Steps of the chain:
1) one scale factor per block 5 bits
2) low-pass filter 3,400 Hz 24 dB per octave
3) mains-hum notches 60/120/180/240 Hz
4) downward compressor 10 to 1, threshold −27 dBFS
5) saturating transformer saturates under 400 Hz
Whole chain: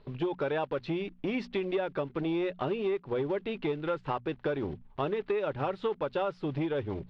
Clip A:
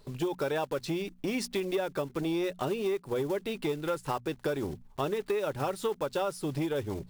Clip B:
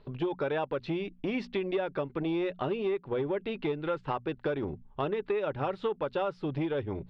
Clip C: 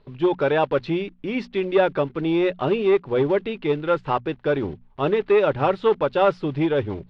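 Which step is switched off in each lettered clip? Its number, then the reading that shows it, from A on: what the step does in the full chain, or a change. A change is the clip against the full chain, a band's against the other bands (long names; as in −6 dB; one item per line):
2, 4 kHz band +4.0 dB
1, distortion level −24 dB
4, average gain reduction 8.0 dB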